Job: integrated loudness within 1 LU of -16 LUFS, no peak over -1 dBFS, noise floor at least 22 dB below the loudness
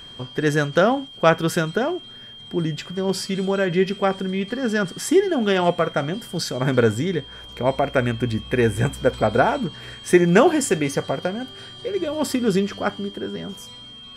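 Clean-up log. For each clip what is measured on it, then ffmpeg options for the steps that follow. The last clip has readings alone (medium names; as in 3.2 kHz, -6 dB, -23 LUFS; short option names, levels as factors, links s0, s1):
steady tone 3.2 kHz; tone level -39 dBFS; loudness -21.5 LUFS; peak level -1.5 dBFS; loudness target -16.0 LUFS
-> -af "bandreject=f=3200:w=30"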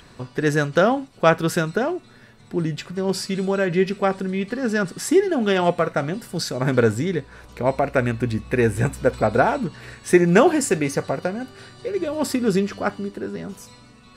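steady tone not found; loudness -21.5 LUFS; peak level -1.5 dBFS; loudness target -16.0 LUFS
-> -af "volume=1.88,alimiter=limit=0.891:level=0:latency=1"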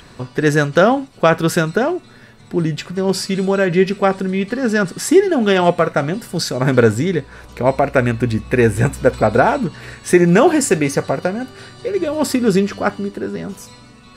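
loudness -16.5 LUFS; peak level -1.0 dBFS; noise floor -43 dBFS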